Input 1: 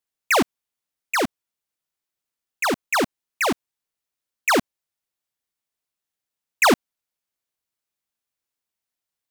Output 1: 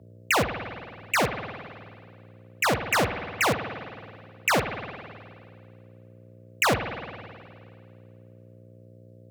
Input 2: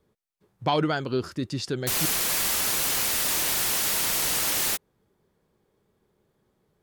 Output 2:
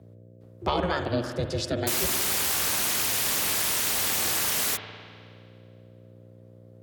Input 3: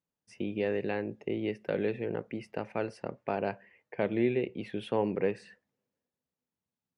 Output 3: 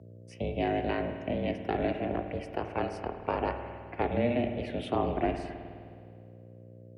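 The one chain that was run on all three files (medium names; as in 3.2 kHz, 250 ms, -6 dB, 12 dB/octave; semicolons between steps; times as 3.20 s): compression, threshold -23 dBFS; ring modulator 180 Hz; mains buzz 60 Hz, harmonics 10, -54 dBFS -5 dB/octave; spring tank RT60 2.1 s, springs 52 ms, chirp 50 ms, DRR 7 dB; frequency shift +46 Hz; trim +4 dB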